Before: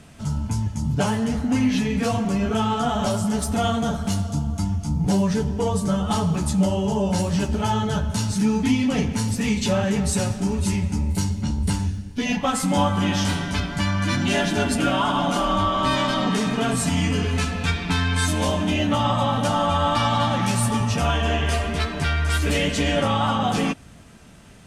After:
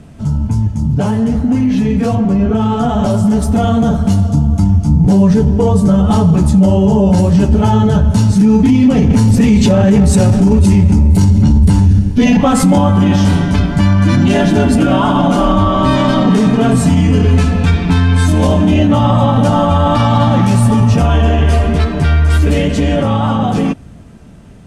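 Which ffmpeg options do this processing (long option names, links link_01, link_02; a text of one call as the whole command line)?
ffmpeg -i in.wav -filter_complex "[0:a]asettb=1/sr,asplit=3[link_01][link_02][link_03];[link_01]atrim=end=2.154[link_04];[link_02]atrim=start=2.15:end=2.61,asetpts=PTS-STARTPTS,afade=type=in:duration=0.004:curve=qsin,afade=type=out:start_time=0.456:duration=0.004:curve=qsin,aemphasis=mode=reproduction:type=cd[link_05];[link_03]atrim=start=2.606[link_06];[link_04][link_05]acrossfade=duration=0.004:curve1=hsin:curve2=qsin[link_07];[link_07][link_06]acrossfade=duration=0.004:curve1=qsin:curve2=hsin,asettb=1/sr,asplit=3[link_08][link_09][link_10];[link_08]atrim=end=9.104[link_11];[link_09]atrim=start=9.1:end=12.79,asetpts=PTS-STARTPTS,afade=type=in:duration=0.004:curve=qsin,afade=type=out:start_time=3.686:duration=0.004:curve=qsin,acontrast=66[link_12];[link_10]atrim=start=12.786[link_13];[link_11][link_12]acrossfade=duration=0.004:curve1=hsin:curve2=qsin[link_14];[link_14][link_13]acrossfade=duration=0.004:curve1=qsin:curve2=hsin,tiltshelf=frequency=830:gain=6.5,alimiter=limit=-11.5dB:level=0:latency=1:release=21,dynaudnorm=framelen=770:gausssize=9:maxgain=4dB,volume=5dB" out.wav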